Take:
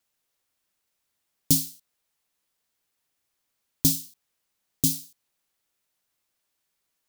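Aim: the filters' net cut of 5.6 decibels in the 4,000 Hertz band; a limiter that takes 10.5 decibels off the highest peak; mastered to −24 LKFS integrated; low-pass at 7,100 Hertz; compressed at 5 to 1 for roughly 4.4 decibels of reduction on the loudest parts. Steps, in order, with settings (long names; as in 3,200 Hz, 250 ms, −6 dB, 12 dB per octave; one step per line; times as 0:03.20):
low-pass filter 7,100 Hz
parametric band 4,000 Hz −6.5 dB
downward compressor 5 to 1, threshold −24 dBFS
level +14.5 dB
brickwall limiter −5.5 dBFS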